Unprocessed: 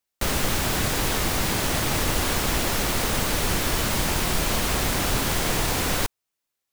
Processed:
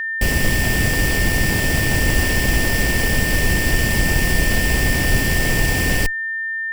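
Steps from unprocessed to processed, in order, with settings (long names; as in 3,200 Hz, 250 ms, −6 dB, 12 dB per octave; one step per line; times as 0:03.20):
lower of the sound and its delayed copy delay 0.39 ms
low-shelf EQ 180 Hz +7 dB
steady tone 1,800 Hz −25 dBFS
level +3.5 dB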